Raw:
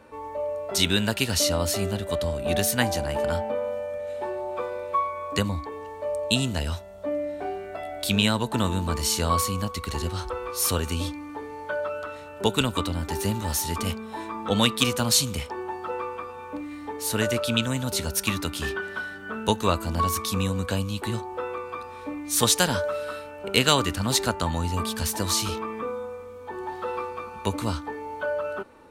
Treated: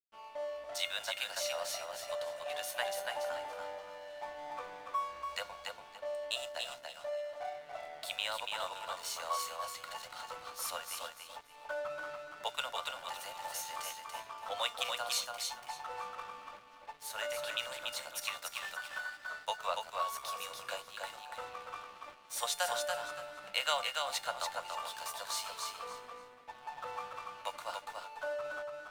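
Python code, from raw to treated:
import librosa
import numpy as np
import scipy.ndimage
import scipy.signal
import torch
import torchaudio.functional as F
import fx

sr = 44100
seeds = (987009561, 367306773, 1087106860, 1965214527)

p1 = scipy.signal.sosfilt(scipy.signal.butter(12, 530.0, 'highpass', fs=sr, output='sos'), x)
p2 = fx.high_shelf(p1, sr, hz=4000.0, db=-7.5)
p3 = fx.rider(p2, sr, range_db=4, speed_s=0.5)
p4 = p2 + F.gain(torch.from_numpy(p3), -1.5).numpy()
p5 = fx.comb_fb(p4, sr, f0_hz=710.0, decay_s=0.42, harmonics='all', damping=0.0, mix_pct=80)
p6 = np.sign(p5) * np.maximum(np.abs(p5) - 10.0 ** (-49.5 / 20.0), 0.0)
y = fx.echo_feedback(p6, sr, ms=286, feedback_pct=23, wet_db=-4)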